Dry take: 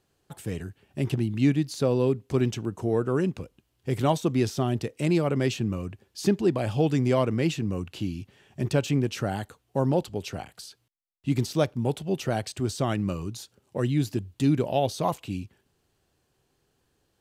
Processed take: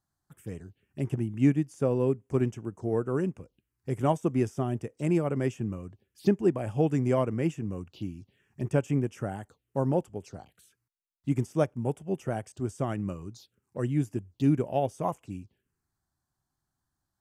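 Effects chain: touch-sensitive phaser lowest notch 450 Hz, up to 4.1 kHz, full sweep at -27.5 dBFS; upward expansion 1.5:1, over -36 dBFS

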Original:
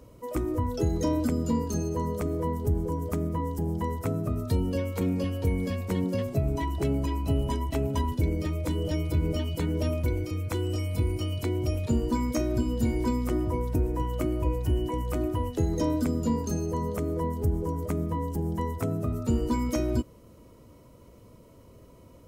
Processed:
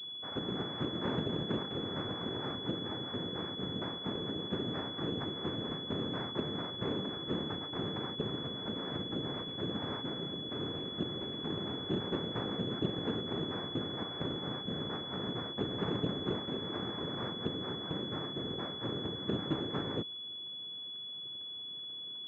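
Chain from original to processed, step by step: noise-vocoded speech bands 3; class-D stage that switches slowly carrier 3.4 kHz; trim -8 dB

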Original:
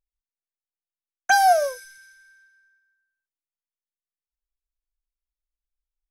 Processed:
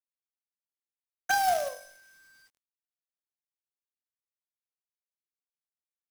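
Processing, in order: de-hum 48.2 Hz, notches 26; companded quantiser 4-bit; trim -8.5 dB

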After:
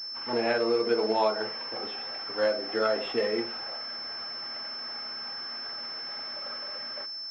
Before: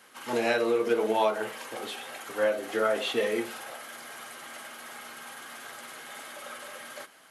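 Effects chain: distance through air 54 m; class-D stage that switches slowly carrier 5.3 kHz

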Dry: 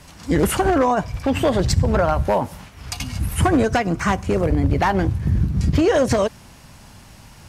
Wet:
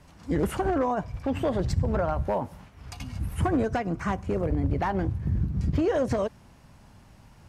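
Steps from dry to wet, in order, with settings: treble shelf 2.1 kHz -9.5 dB; trim -7.5 dB

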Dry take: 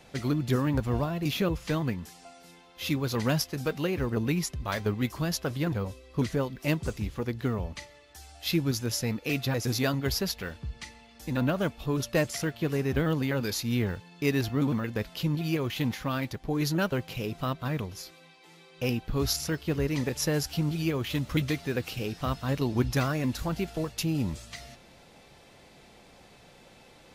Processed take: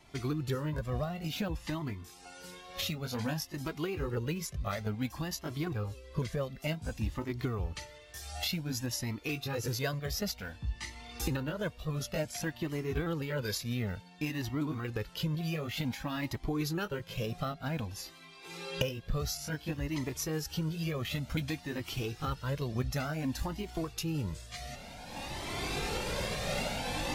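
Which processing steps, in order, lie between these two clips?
sawtooth pitch modulation +1 st, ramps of 1488 ms; recorder AGC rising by 18 dB/s; Shepard-style flanger rising 0.55 Hz; trim -1.5 dB

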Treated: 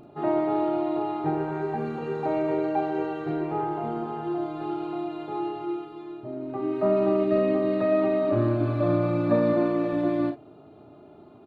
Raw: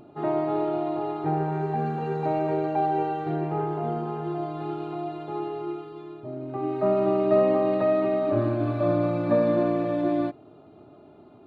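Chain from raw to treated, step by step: 7.23–7.91 s: peaking EQ 860 Hz -12.5 dB -> -4.5 dB 0.83 oct; 9.53–9.93 s: Bessel high-pass 180 Hz; early reflections 35 ms -7.5 dB, 49 ms -13 dB

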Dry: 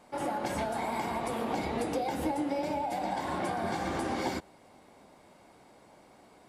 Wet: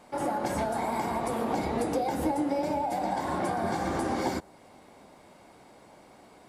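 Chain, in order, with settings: dynamic bell 2.9 kHz, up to -6 dB, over -55 dBFS, Q 1.1; trim +3.5 dB

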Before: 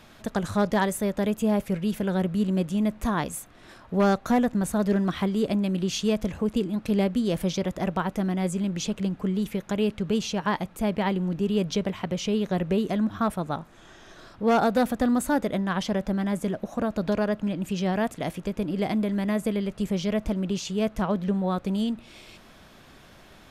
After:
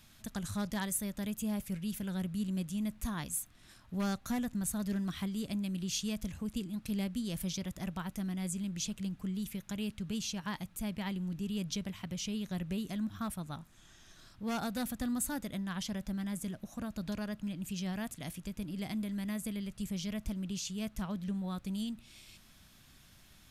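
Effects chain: FFT filter 110 Hz 0 dB, 260 Hz -6 dB, 440 Hz -15 dB, 11 kHz +7 dB; trim -6 dB

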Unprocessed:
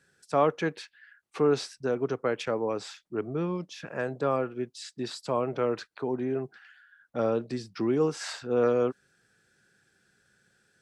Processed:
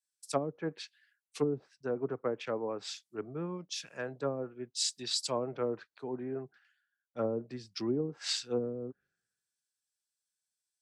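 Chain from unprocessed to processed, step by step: low-pass that closes with the level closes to 320 Hz, closed at -20.5 dBFS; pre-emphasis filter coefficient 0.8; three bands expanded up and down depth 100%; trim +7 dB

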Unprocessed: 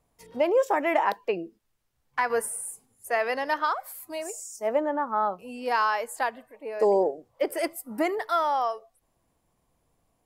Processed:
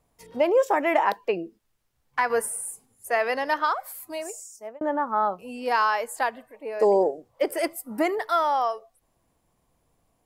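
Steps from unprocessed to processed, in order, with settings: 3.91–4.81 s: fade out equal-power; 7.00–7.51 s: dynamic bell 8.3 kHz, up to +5 dB, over -56 dBFS, Q 0.91; trim +2 dB

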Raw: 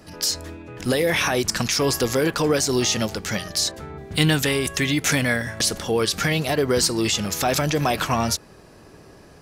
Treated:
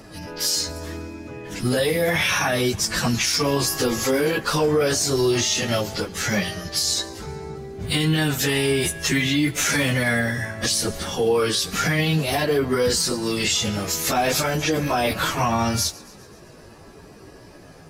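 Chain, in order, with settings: thinning echo 69 ms, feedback 61%, high-pass 300 Hz, level -23.5 dB; plain phase-vocoder stretch 1.9×; peak limiter -17 dBFS, peak gain reduction 9.5 dB; trim +5 dB

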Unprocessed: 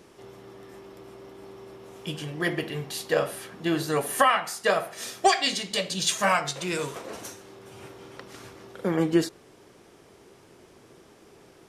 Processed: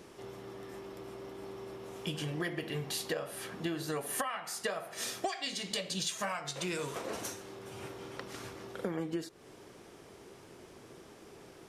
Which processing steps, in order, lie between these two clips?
compression 16:1, threshold -32 dBFS, peak gain reduction 18.5 dB

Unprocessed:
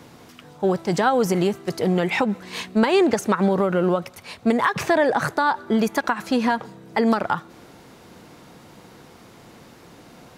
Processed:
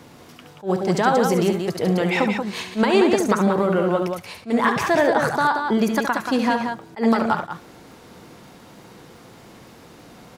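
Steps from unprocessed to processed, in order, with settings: loudspeakers at several distances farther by 24 m -8 dB, 62 m -6 dB; crackle 80 per s -45 dBFS; attacks held to a fixed rise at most 280 dB/s

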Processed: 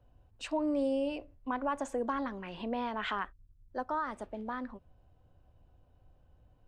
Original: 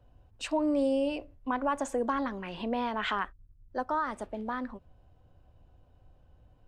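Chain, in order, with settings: treble shelf 6.3 kHz -4.5 dB; trim -3.5 dB

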